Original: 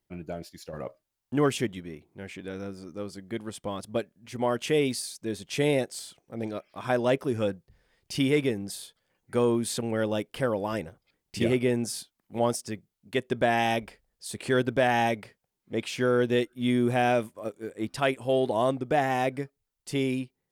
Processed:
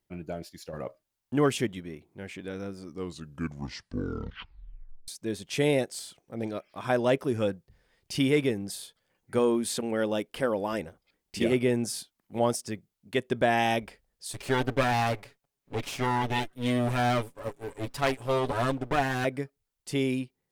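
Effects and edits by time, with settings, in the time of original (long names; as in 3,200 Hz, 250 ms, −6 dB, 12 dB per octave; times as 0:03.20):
0:02.80: tape stop 2.28 s
0:09.38–0:11.52: parametric band 120 Hz −13.5 dB 0.34 octaves
0:14.33–0:19.25: lower of the sound and its delayed copy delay 7.1 ms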